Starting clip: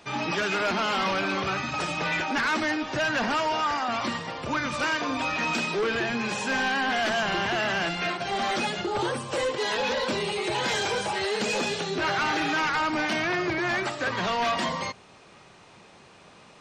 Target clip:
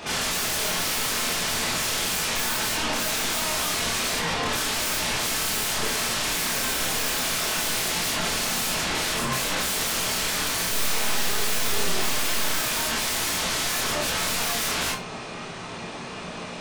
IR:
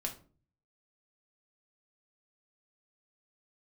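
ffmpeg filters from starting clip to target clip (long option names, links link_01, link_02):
-filter_complex "[0:a]asettb=1/sr,asplit=3[link_01][link_02][link_03];[link_01]atrim=end=10.674[link_04];[link_02]atrim=start=10.67:end=12.56,asetpts=PTS-STARTPTS,afade=type=in:duration=0.004:curve=qsin,afade=type=out:start_time=1.886:duration=0.004:curve=qsin,aeval=exprs='0.106*(cos(1*acos(clip(val(0)/0.106,-1,1)))-cos(1*PI/2))+0.0168*(cos(4*acos(clip(val(0)/0.106,-1,1)))-cos(4*PI/2))':channel_layout=same[link_05];[link_03]atrim=start=12.556[link_06];[link_04][link_05]acrossfade=duration=0.004:curve1=hsin:curve2=qsin[link_07];[link_07][link_06]acrossfade=duration=0.004:curve1=qsin:curve2=hsin,aeval=exprs='0.119*sin(PI/2*7.08*val(0)/0.119)':channel_layout=same,asplit=2[link_08][link_09];[1:a]atrim=start_sample=2205,afade=type=out:start_time=0.15:duration=0.01,atrim=end_sample=7056,adelay=27[link_10];[link_09][link_10]afir=irnorm=-1:irlink=0,volume=2dB[link_11];[link_08][link_11]amix=inputs=2:normalize=0,volume=-9dB"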